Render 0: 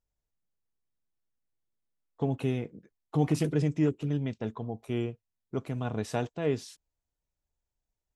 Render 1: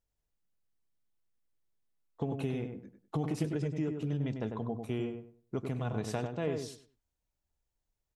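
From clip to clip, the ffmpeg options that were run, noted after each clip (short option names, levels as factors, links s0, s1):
-filter_complex "[0:a]acompressor=threshold=0.0316:ratio=6,asplit=2[s0][s1];[s1]adelay=98,lowpass=f=1700:p=1,volume=0.562,asplit=2[s2][s3];[s3]adelay=98,lowpass=f=1700:p=1,volume=0.27,asplit=2[s4][s5];[s5]adelay=98,lowpass=f=1700:p=1,volume=0.27,asplit=2[s6][s7];[s7]adelay=98,lowpass=f=1700:p=1,volume=0.27[s8];[s2][s4][s6][s8]amix=inputs=4:normalize=0[s9];[s0][s9]amix=inputs=2:normalize=0"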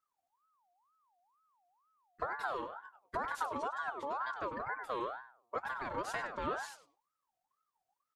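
-af "aecho=1:1:5:0.8,aeval=exprs='val(0)*sin(2*PI*1000*n/s+1000*0.3/2.1*sin(2*PI*2.1*n/s))':c=same,volume=0.75"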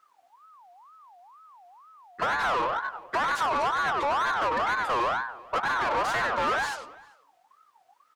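-filter_complex "[0:a]asplit=2[s0][s1];[s1]highpass=f=720:p=1,volume=25.1,asoftclip=type=tanh:threshold=0.0841[s2];[s0][s2]amix=inputs=2:normalize=0,lowpass=f=1900:p=1,volume=0.501,asplit=2[s3][s4];[s4]adelay=390.7,volume=0.0794,highshelf=f=4000:g=-8.79[s5];[s3][s5]amix=inputs=2:normalize=0,volume=1.58"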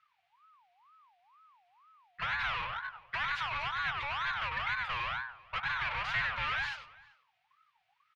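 -af "firequalizer=gain_entry='entry(130,0);entry(270,-28);entry(850,-14);entry(2300,3);entry(8100,-25)':delay=0.05:min_phase=1"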